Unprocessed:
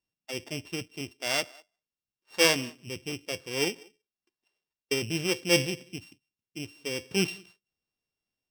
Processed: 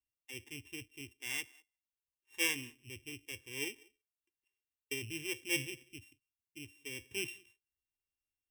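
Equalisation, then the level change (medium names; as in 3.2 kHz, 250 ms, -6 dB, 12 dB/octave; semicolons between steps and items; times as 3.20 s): amplifier tone stack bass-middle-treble 6-0-2; static phaser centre 910 Hz, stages 8; +11.0 dB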